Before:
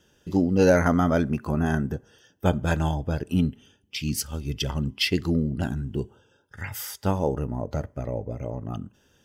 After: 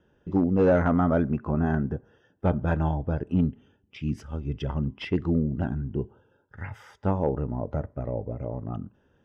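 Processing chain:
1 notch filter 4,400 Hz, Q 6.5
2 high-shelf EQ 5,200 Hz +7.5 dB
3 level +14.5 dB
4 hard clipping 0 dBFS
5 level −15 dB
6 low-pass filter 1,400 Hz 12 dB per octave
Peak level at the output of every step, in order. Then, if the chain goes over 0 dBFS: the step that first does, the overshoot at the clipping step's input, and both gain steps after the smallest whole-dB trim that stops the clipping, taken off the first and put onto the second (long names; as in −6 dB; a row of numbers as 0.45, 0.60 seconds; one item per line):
−8.0, −7.5, +7.0, 0.0, −15.0, −14.5 dBFS
step 3, 7.0 dB
step 3 +7.5 dB, step 5 −8 dB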